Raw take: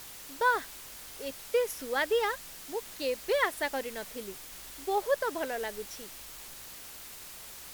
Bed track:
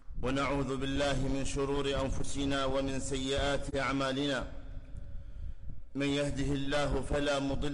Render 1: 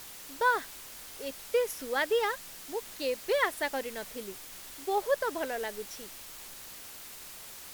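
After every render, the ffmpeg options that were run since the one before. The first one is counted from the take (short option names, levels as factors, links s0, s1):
-af "bandreject=f=50:t=h:w=4,bandreject=f=100:t=h:w=4,bandreject=f=150:t=h:w=4"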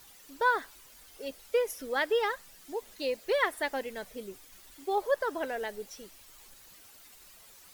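-af "afftdn=nr=11:nf=-47"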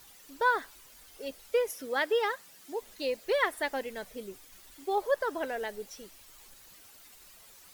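-filter_complex "[0:a]asettb=1/sr,asplit=3[s0][s1][s2];[s0]atrim=end=1.684[s3];[s1]atrim=start=1.68:end=2.79,asetpts=PTS-STARTPTS,afade=t=in:d=0.004:c=qsin,afade=t=out:st=1.106:d=0.004:c=qsin,highpass=110[s4];[s2]atrim=start=2.786[s5];[s3][s4]acrossfade=d=0.004:c1=hsin:c2=qsin[s6];[s6][s5]acrossfade=d=0.004:c1=qsin:c2=hsin"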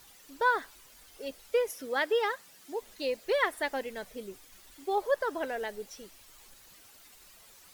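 -af "highshelf=f=11000:g=-3"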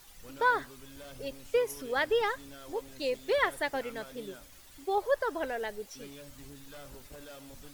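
-filter_complex "[1:a]volume=0.133[s0];[0:a][s0]amix=inputs=2:normalize=0"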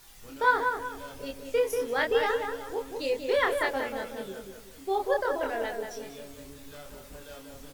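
-filter_complex "[0:a]asplit=2[s0][s1];[s1]adelay=26,volume=0.708[s2];[s0][s2]amix=inputs=2:normalize=0,asplit=2[s3][s4];[s4]adelay=187,lowpass=f=2000:p=1,volume=0.596,asplit=2[s5][s6];[s6]adelay=187,lowpass=f=2000:p=1,volume=0.41,asplit=2[s7][s8];[s8]adelay=187,lowpass=f=2000:p=1,volume=0.41,asplit=2[s9][s10];[s10]adelay=187,lowpass=f=2000:p=1,volume=0.41,asplit=2[s11][s12];[s12]adelay=187,lowpass=f=2000:p=1,volume=0.41[s13];[s3][s5][s7][s9][s11][s13]amix=inputs=6:normalize=0"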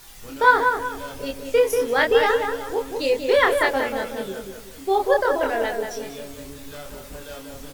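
-af "volume=2.51"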